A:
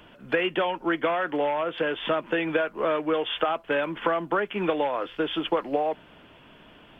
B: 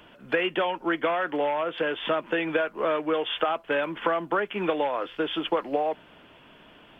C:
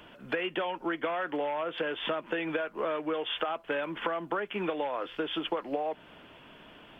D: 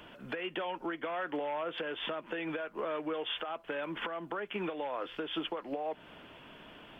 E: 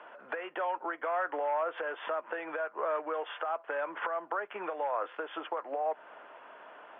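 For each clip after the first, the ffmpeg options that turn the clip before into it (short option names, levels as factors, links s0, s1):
-af "lowshelf=f=180:g=-5"
-af "acompressor=threshold=0.0282:ratio=2.5"
-af "alimiter=level_in=1.33:limit=0.0631:level=0:latency=1:release=312,volume=0.75"
-af "asuperpass=centerf=950:order=4:qfactor=0.85,volume=2"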